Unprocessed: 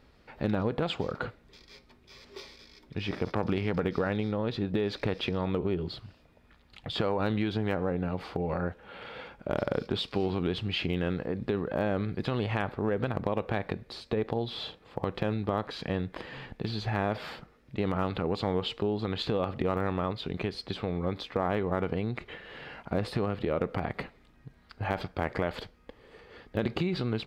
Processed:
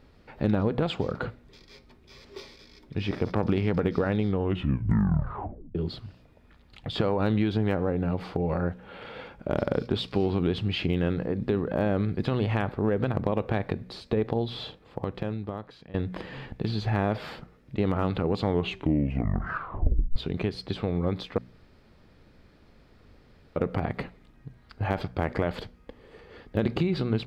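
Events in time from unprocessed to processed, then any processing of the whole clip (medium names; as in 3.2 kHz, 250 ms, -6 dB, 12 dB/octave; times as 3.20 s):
4.21 s: tape stop 1.54 s
14.53–15.94 s: fade out, to -20.5 dB
18.49 s: tape stop 1.67 s
21.38–23.56 s: room tone
whole clip: bass shelf 460 Hz +6 dB; de-hum 60.9 Hz, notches 4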